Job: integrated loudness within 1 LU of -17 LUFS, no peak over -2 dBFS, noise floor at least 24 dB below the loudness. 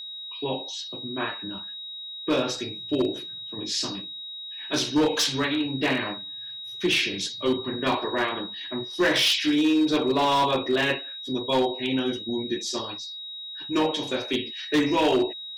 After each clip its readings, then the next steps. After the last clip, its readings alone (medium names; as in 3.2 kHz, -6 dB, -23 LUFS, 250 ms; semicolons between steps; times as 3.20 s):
clipped samples 1.3%; clipping level -16.5 dBFS; steady tone 3.8 kHz; tone level -35 dBFS; loudness -26.0 LUFS; peak level -16.5 dBFS; loudness target -17.0 LUFS
-> clip repair -16.5 dBFS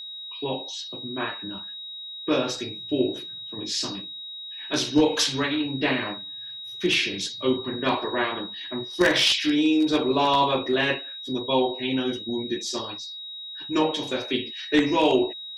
clipped samples 0.0%; steady tone 3.8 kHz; tone level -35 dBFS
-> band-stop 3.8 kHz, Q 30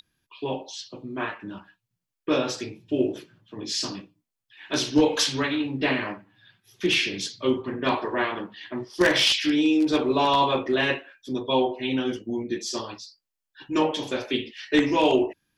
steady tone not found; loudness -25.0 LUFS; peak level -7.5 dBFS; loudness target -17.0 LUFS
-> trim +8 dB; peak limiter -2 dBFS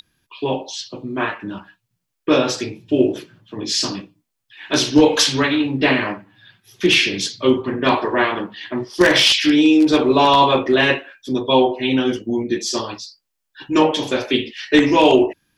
loudness -17.0 LUFS; peak level -2.0 dBFS; noise floor -77 dBFS